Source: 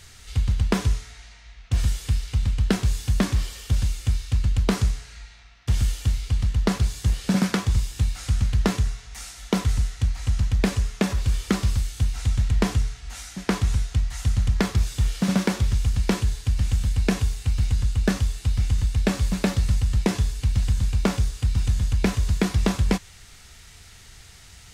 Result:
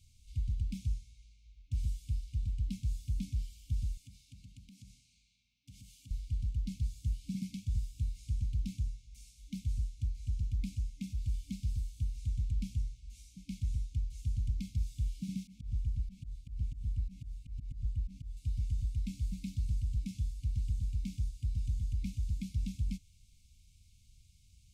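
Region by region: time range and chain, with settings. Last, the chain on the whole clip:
3.97–6.11 s: high-pass 290 Hz + bass shelf 390 Hz +7.5 dB + compression 4:1, threshold -33 dBFS
15.47–18.37 s: treble shelf 3.1 kHz -10 dB + slow attack 127 ms
whole clip: bass shelf 67 Hz -8 dB; FFT band-reject 290–2100 Hz; amplifier tone stack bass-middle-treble 10-0-1

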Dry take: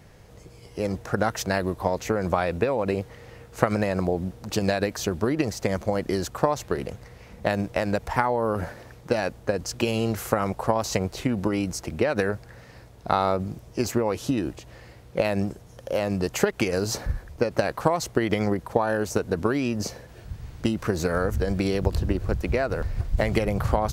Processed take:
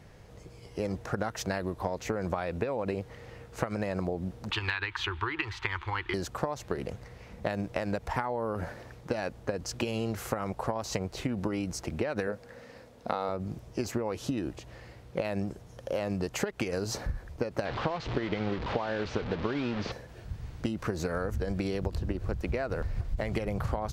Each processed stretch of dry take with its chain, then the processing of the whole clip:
4.51–6.14 s: FFT filter 110 Hz 0 dB, 170 Hz -22 dB, 250 Hz -21 dB, 350 Hz -3 dB, 620 Hz -27 dB, 900 Hz +8 dB, 3.4 kHz +11 dB, 5.4 kHz -10 dB, 15 kHz -18 dB + hard clipper -8 dBFS
12.27–13.29 s: bass shelf 400 Hz -11 dB + small resonant body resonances 240/490 Hz, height 13 dB, ringing for 40 ms
17.65–19.92 s: one-bit delta coder 64 kbps, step -23.5 dBFS + low-pass 4.2 kHz 24 dB/octave
whole clip: compression 4:1, threshold -26 dBFS; treble shelf 8.7 kHz -7.5 dB; trim -2 dB

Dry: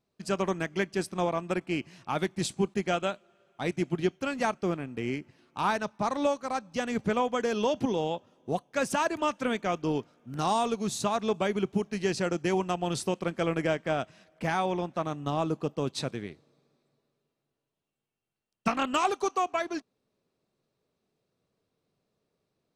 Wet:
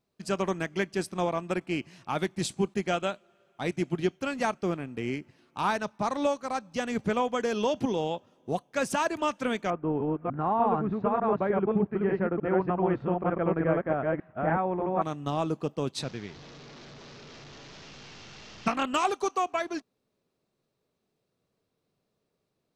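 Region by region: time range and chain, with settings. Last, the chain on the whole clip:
9.70–15.02 s: chunks repeated in reverse 300 ms, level -0.5 dB + low-pass 1.7 kHz 24 dB/octave
16.03–18.67 s: one-bit delta coder 32 kbps, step -40 dBFS + peaking EQ 500 Hz -3 dB 2.6 oct
whole clip: none

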